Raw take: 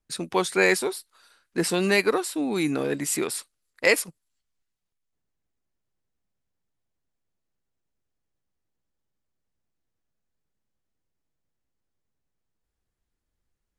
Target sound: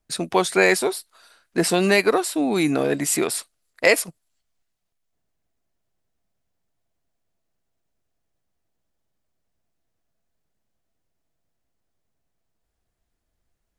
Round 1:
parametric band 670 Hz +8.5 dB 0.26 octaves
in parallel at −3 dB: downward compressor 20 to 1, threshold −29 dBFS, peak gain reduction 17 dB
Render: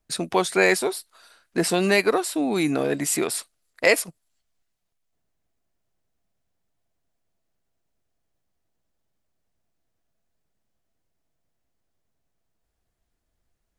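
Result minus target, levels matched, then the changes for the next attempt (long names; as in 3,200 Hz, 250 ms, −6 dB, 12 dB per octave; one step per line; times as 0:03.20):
downward compressor: peak gain reduction +9 dB
change: downward compressor 20 to 1, threshold −19.5 dBFS, peak gain reduction 8 dB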